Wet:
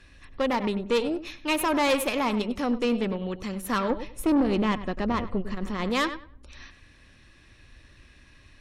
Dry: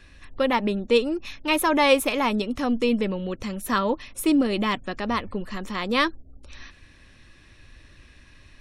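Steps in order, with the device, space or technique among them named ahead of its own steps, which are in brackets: 3.9–5.9 tilt -2 dB/oct; tape echo 96 ms, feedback 23%, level -12 dB, low-pass 3600 Hz; rockabilly slapback (tube stage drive 18 dB, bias 0.55; tape echo 0.106 s, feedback 30%, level -22.5 dB, low-pass 2500 Hz)

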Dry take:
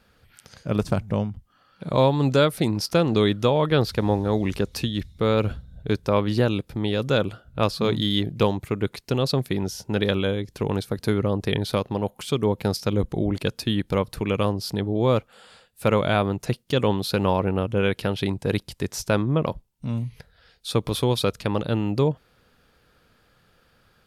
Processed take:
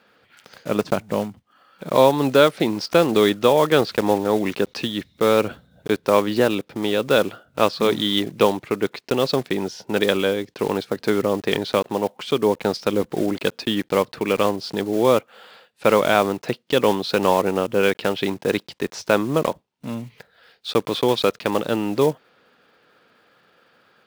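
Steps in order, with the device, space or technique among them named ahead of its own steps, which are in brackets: early digital voice recorder (BPF 270–3900 Hz; block floating point 5-bit); gain +5.5 dB

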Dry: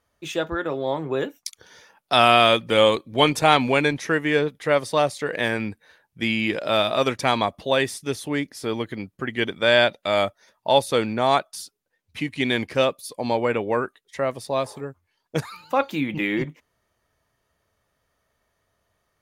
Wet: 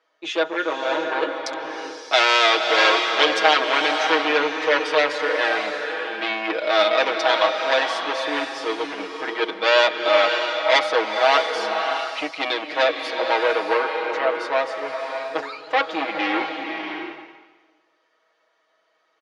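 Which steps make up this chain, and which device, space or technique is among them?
public-address speaker with an overloaded transformer (core saturation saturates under 4000 Hz; BPF 300–5200 Hz); three-band isolator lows -23 dB, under 240 Hz, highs -13 dB, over 6400 Hz; low shelf 230 Hz -5 dB; comb 6.3 ms, depth 89%; bloom reverb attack 0.63 s, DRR 3.5 dB; gain +4 dB

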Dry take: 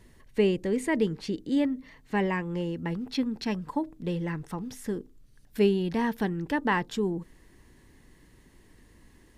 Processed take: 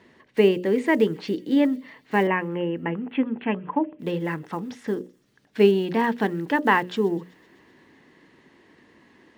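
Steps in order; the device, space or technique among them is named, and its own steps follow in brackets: early digital voice recorder (BPF 230–3400 Hz; block floating point 7-bit); 2.27–3.99 steep low-pass 3100 Hz 72 dB/oct; notches 60/120/180/240/300/360/420/480/540/600 Hz; thin delay 0.127 s, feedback 71%, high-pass 4800 Hz, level -18 dB; gain +7.5 dB

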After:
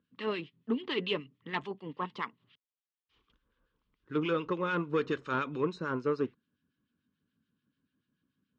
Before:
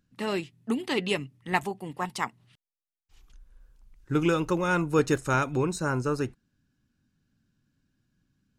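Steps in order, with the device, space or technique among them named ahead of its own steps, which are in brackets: guitar amplifier with harmonic tremolo (harmonic tremolo 6.9 Hz, crossover 1400 Hz; soft clip -20.5 dBFS, distortion -17 dB; speaker cabinet 110–4100 Hz, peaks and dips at 120 Hz -7 dB, 260 Hz +3 dB, 450 Hz +6 dB, 750 Hz -9 dB, 1100 Hz +7 dB, 3200 Hz +6 dB); gain -2.5 dB

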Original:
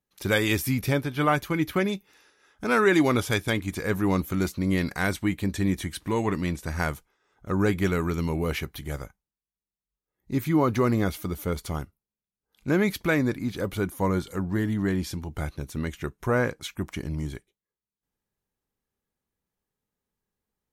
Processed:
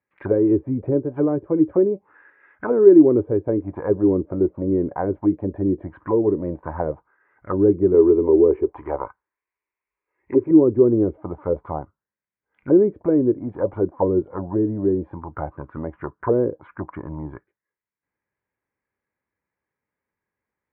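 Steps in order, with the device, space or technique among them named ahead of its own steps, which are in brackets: 7.94–10.51 fifteen-band EQ 160 Hz -10 dB, 400 Hz +9 dB, 1000 Hz +10 dB, 2500 Hz +11 dB; envelope filter bass rig (envelope low-pass 390–2200 Hz down, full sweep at -21 dBFS; speaker cabinet 68–2400 Hz, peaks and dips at 100 Hz +3 dB, 190 Hz -3 dB, 320 Hz +5 dB, 560 Hz +6 dB, 990 Hz +7 dB, 1600 Hz +4 dB); gain -2 dB

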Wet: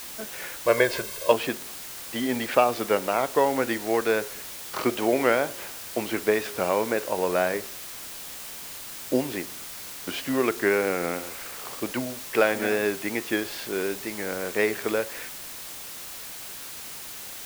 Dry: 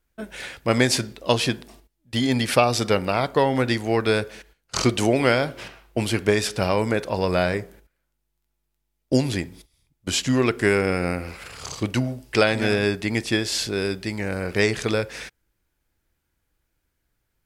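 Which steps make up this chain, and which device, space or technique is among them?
wax cylinder (BPF 300–2200 Hz; wow and flutter; white noise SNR 11 dB); 0.66–1.32 comb 1.9 ms, depth 79%; gain -1 dB

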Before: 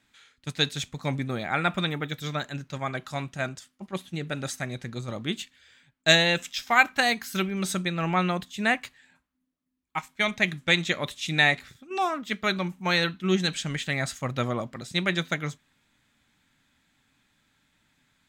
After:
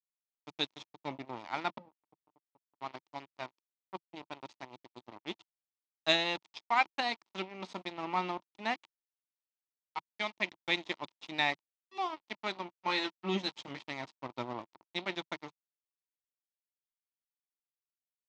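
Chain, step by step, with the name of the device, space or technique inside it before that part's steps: 1.78–2.81 inverse Chebyshev band-stop 640–6700 Hz, stop band 60 dB; 12.67–13.79 doubler 15 ms -3.5 dB; blown loudspeaker (crossover distortion -30 dBFS; speaker cabinet 150–5100 Hz, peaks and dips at 160 Hz -8 dB, 330 Hz +5 dB, 490 Hz -4 dB, 930 Hz +9 dB, 1600 Hz -9 dB); gain -6.5 dB

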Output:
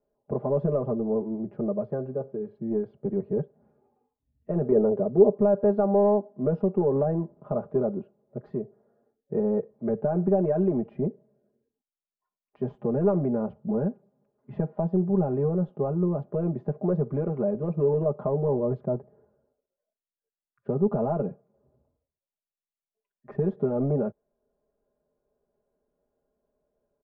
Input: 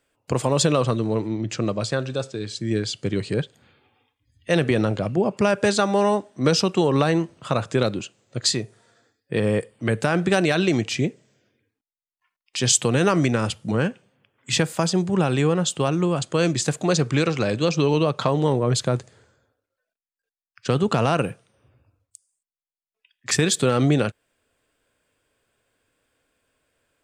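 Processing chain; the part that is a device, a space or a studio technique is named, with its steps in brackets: overdriven synthesiser ladder filter (soft clip -12.5 dBFS, distortion -17 dB; ladder low-pass 840 Hz, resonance 30%); comb 4.9 ms, depth 100%; 4.72–5.38 bell 430 Hz +10.5 dB 0.37 oct

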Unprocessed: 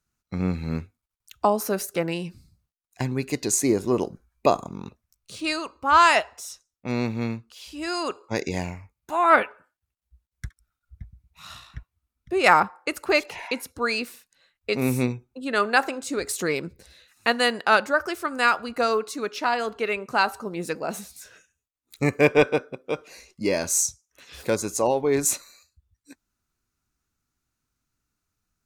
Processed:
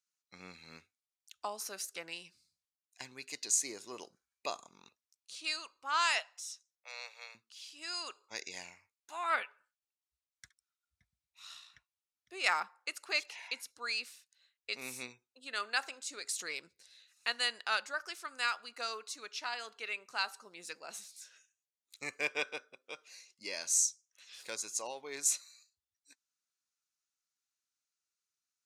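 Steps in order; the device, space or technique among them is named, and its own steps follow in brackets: 6.18–7.35 steep high-pass 480 Hz 72 dB/oct; piezo pickup straight into a mixer (LPF 5800 Hz 12 dB/oct; differentiator)

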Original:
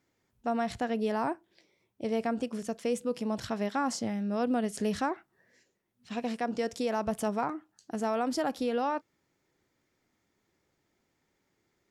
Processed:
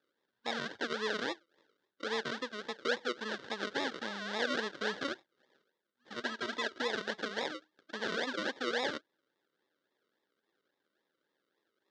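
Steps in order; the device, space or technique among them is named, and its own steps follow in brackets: circuit-bent sampling toy (decimation with a swept rate 41×, swing 60% 3.6 Hz; speaker cabinet 460–5300 Hz, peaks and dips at 700 Hz -10 dB, 1100 Hz -5 dB, 1600 Hz +8 dB, 2400 Hz -8 dB, 3600 Hz +5 dB); 6.24–6.82 comb 3.1 ms, depth 67%

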